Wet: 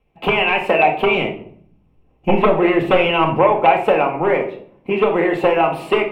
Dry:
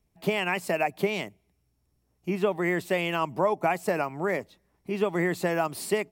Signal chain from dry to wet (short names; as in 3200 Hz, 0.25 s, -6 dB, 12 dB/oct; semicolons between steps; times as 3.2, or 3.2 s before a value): 1.15–3.39 low shelf 330 Hz +10 dB; transient shaper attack +7 dB, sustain +3 dB; sine folder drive 10 dB, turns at -2.5 dBFS; EQ curve 280 Hz 0 dB, 400 Hz +9 dB, 570 Hz +6 dB, 920 Hz +9 dB, 1800 Hz 0 dB, 2700 Hz +12 dB, 4400 Hz -12 dB, 6700 Hz -16 dB; reverb RT60 0.60 s, pre-delay 4 ms, DRR 1.5 dB; gain -12 dB